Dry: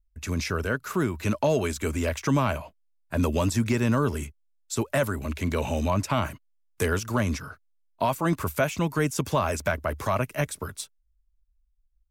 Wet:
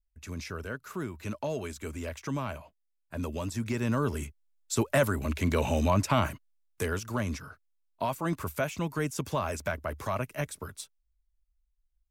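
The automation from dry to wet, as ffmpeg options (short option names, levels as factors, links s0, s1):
-af "afade=t=in:st=3.48:d=1.27:silence=0.316228,afade=t=out:st=6.29:d=0.56:silence=0.501187"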